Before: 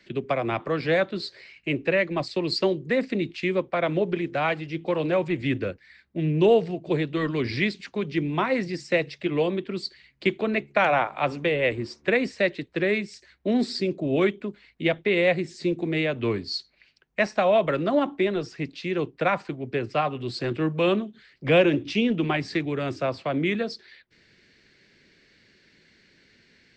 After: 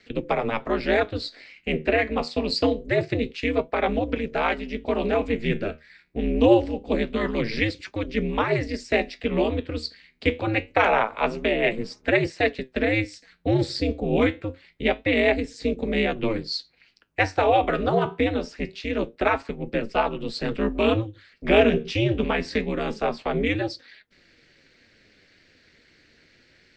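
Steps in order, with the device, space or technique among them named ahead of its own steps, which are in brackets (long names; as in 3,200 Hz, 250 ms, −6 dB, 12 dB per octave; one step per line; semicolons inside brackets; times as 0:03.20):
alien voice (ring modulation 110 Hz; flanger 0.25 Hz, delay 4.6 ms, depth 9.2 ms, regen +72%)
level +8.5 dB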